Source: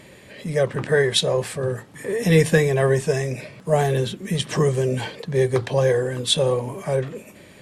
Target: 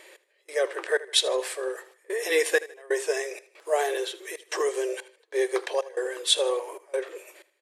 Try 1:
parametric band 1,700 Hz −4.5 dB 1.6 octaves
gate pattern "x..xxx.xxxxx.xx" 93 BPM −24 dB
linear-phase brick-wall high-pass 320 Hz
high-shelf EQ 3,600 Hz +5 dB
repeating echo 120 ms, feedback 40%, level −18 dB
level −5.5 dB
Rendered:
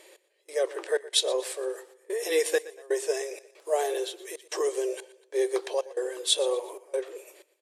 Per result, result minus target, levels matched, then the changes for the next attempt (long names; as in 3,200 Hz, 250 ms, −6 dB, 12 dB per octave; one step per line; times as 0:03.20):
echo 42 ms late; 2,000 Hz band −5.5 dB
change: repeating echo 78 ms, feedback 40%, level −18 dB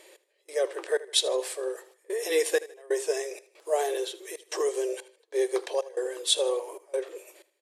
2,000 Hz band −5.5 dB
change: parametric band 1,700 Hz +3.5 dB 1.6 octaves